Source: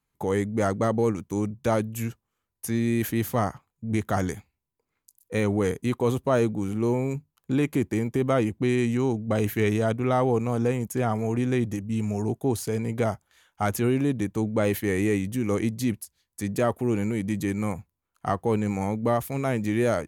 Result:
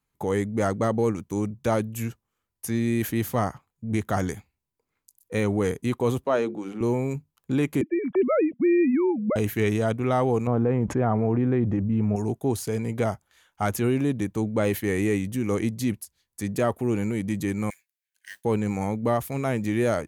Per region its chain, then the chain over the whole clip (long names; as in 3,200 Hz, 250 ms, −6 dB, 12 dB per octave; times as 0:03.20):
0:06.24–0:06.81: three-way crossover with the lows and the highs turned down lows −21 dB, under 220 Hz, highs −15 dB, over 5,800 Hz + mains-hum notches 50/100/150/200/250/300/350/400/450 Hz
0:07.81–0:09.36: three sine waves on the formant tracks + low-shelf EQ 230 Hz +7 dB
0:10.47–0:12.16: low-pass filter 1,400 Hz + envelope flattener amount 70%
0:17.70–0:18.45: linear-phase brick-wall high-pass 1,500 Hz + noise that follows the level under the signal 13 dB
whole clip: no processing